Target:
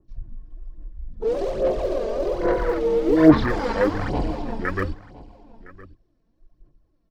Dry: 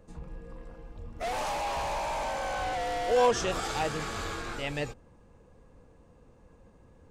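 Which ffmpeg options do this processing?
-filter_complex "[0:a]bandreject=f=1200:w=10,afwtdn=0.0158,dynaudnorm=f=390:g=9:m=1.5,asetrate=28595,aresample=44100,atempo=1.54221,aphaser=in_gain=1:out_gain=1:delay=4.5:decay=0.58:speed=1.2:type=sinusoidal,asplit=2[s0][s1];[s1]aecho=0:1:1012:0.112[s2];[s0][s2]amix=inputs=2:normalize=0,adynamicequalizer=threshold=0.00891:dfrequency=1900:dqfactor=0.7:tfrequency=1900:tqfactor=0.7:attack=5:release=100:ratio=0.375:range=3.5:mode=boostabove:tftype=highshelf,volume=1.68"

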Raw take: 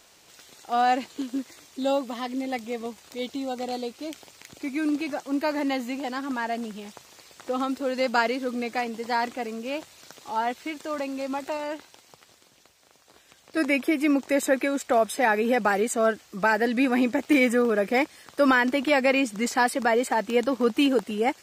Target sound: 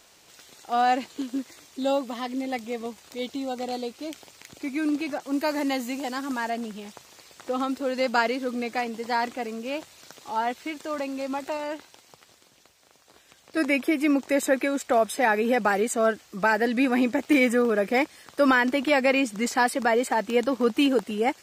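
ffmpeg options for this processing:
-filter_complex "[0:a]asettb=1/sr,asplit=3[s0][s1][s2];[s0]atrim=end=5.184[s3];[s1]atrim=start=5.18:end=6.5,asetpts=PTS-STARTPTS,afade=t=in:d=0.004:c=qsin,afade=t=out:st=1.316:d=0.004:c=qsin,adynamicequalizer=threshold=0.00355:dfrequency=4900:dqfactor=0.7:tfrequency=4900:tqfactor=0.7:attack=5:release=100:ratio=0.375:range=3.5:mode=boostabove:tftype=highshelf[s4];[s2]atrim=start=6.496[s5];[s3][s4]acrossfade=d=0.004:c1=hsin:c2=qsin[s6];[s6][s5]acrossfade=d=0.004:c1=qsin:c2=hsin"

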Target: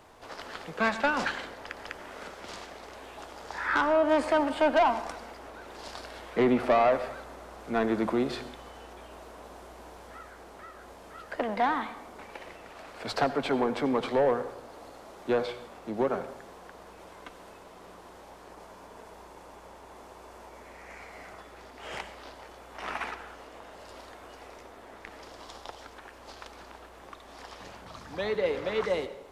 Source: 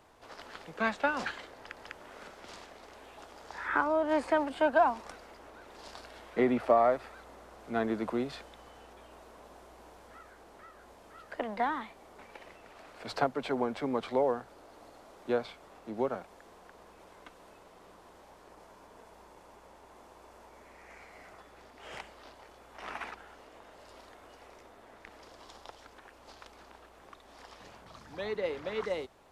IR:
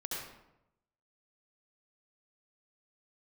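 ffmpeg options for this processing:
-filter_complex "[0:a]asoftclip=type=tanh:threshold=0.0668,asplit=2[s0][s1];[1:a]atrim=start_sample=2205,adelay=11[s2];[s1][s2]afir=irnorm=-1:irlink=0,volume=0.224[s3];[s0][s3]amix=inputs=2:normalize=0,volume=2"

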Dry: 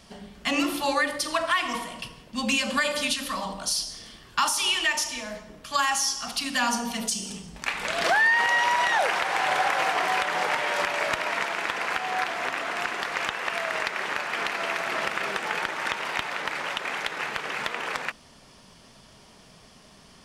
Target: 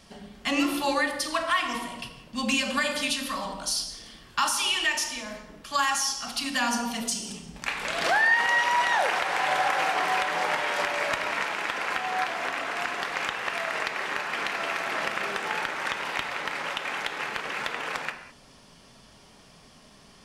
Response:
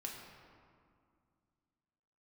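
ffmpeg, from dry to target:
-filter_complex "[0:a]asplit=2[s0][s1];[1:a]atrim=start_sample=2205,afade=t=out:st=0.27:d=0.01,atrim=end_sample=12348[s2];[s1][s2]afir=irnorm=-1:irlink=0,volume=1.33[s3];[s0][s3]amix=inputs=2:normalize=0,volume=0.473"

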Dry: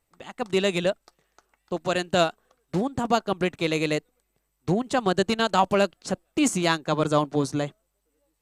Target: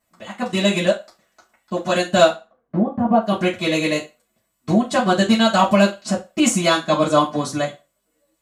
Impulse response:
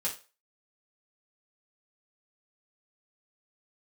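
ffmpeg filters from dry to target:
-filter_complex "[0:a]asettb=1/sr,asplit=3[s0][s1][s2];[s0]atrim=end=2.284[s3];[s1]atrim=start=2.28:end=3.22,asetpts=PTS-STARTPTS,afade=t=in:d=0.004:c=qsin,afade=t=out:st=0.936:d=0.004:c=qsin,lowpass=1000[s4];[s2]atrim=start=3.216[s5];[s3][s4]acrossfade=d=0.004:c1=hsin:c2=qsin[s6];[s6][s5]acrossfade=d=0.004:c1=qsin:c2=hsin[s7];[1:a]atrim=start_sample=2205,asetrate=52920,aresample=44100[s8];[s7][s8]afir=irnorm=-1:irlink=0,volume=1.68"

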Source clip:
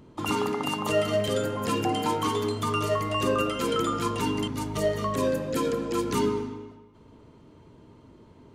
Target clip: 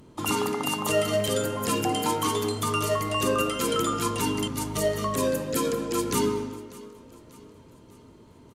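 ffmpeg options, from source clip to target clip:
-af "equalizer=f=12000:t=o:w=1.7:g=10.5,aecho=1:1:592|1184|1776|2368:0.0891|0.0446|0.0223|0.0111"

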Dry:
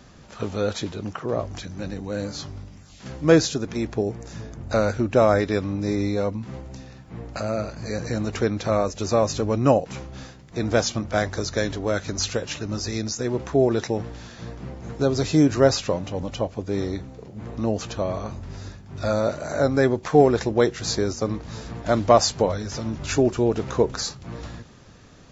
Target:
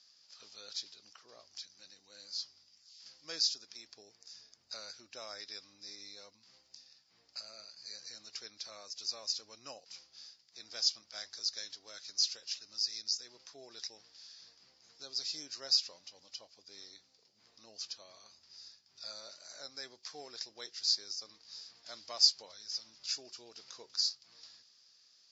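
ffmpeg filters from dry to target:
-af "bandpass=f=4900:t=q:w=7.4:csg=0,volume=1.41"

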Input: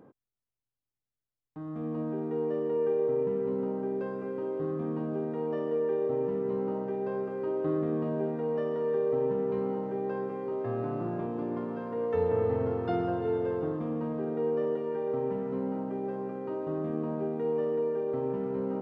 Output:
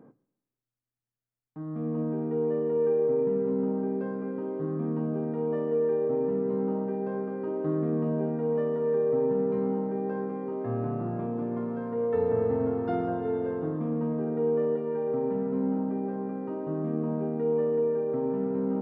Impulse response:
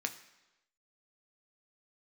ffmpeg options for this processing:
-filter_complex "[0:a]asplit=2[s0][s1];[s1]lowshelf=f=350:g=12[s2];[1:a]atrim=start_sample=2205,lowpass=2600[s3];[s2][s3]afir=irnorm=-1:irlink=0,volume=0.668[s4];[s0][s4]amix=inputs=2:normalize=0,volume=0.531"

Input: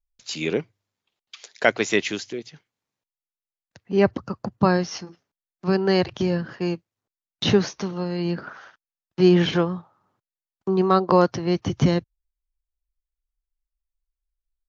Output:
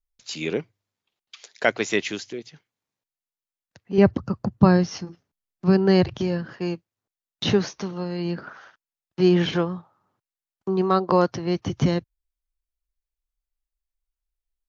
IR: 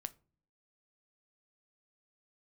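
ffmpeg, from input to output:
-filter_complex "[0:a]asettb=1/sr,asplit=3[s0][s1][s2];[s0]atrim=end=3.984[s3];[s1]atrim=start=3.98:end=6.19,asetpts=PTS-STARTPTS,afade=t=in:d=0.004:c=qsin,afade=t=out:st=2.206:d=0.004:c=qsin,lowshelf=f=240:g=11.5[s4];[s2]atrim=start=6.186[s5];[s3][s4]acrossfade=d=0.004:c1=hsin:c2=qsin[s6];[s6][s5]acrossfade=d=0.004:c1=qsin:c2=hsin,volume=0.794"

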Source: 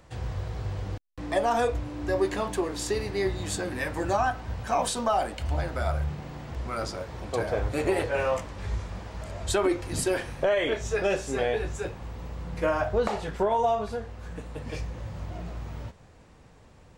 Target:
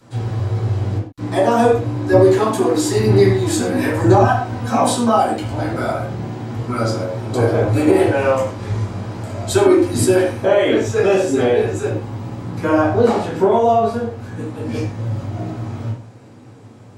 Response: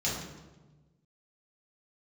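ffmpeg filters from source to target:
-filter_complex "[0:a]asettb=1/sr,asplit=3[s0][s1][s2];[s0]atrim=end=2.124[s3];[s1]atrim=start=2.12:end=4.76,asetpts=PTS-STARTPTS,afade=t=in:d=0.004:c=qsin,afade=t=out:st=2.636:d=0.004:c=qsin,aphaser=in_gain=1:out_gain=1:delay=4.2:decay=0.58:speed=1:type=sinusoidal[s4];[s2]atrim=start=4.756[s5];[s3][s4]acrossfade=d=0.004:c1=hsin:c2=qsin[s6];[s6][s5]acrossfade=d=0.004:c1=qsin:c2=hsin[s7];[1:a]atrim=start_sample=2205,afade=t=out:st=0.31:d=0.01,atrim=end_sample=14112,asetrate=79380,aresample=44100[s8];[s7][s8]afir=irnorm=-1:irlink=0,alimiter=level_in=2.11:limit=0.891:release=50:level=0:latency=1,volume=0.891"

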